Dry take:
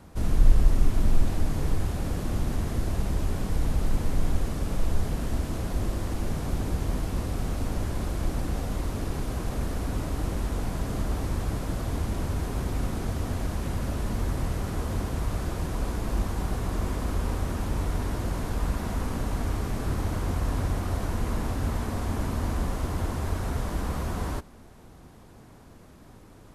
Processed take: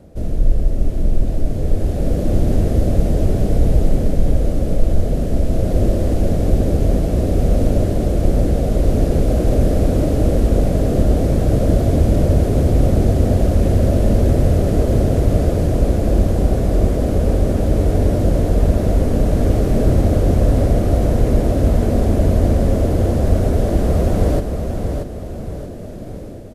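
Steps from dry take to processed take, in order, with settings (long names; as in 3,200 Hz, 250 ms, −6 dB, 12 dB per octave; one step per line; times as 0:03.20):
low shelf with overshoot 760 Hz +8 dB, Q 3
automatic gain control gain up to 11.5 dB
on a send: repeating echo 631 ms, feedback 38%, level −6 dB
on the sum: level −2.5 dB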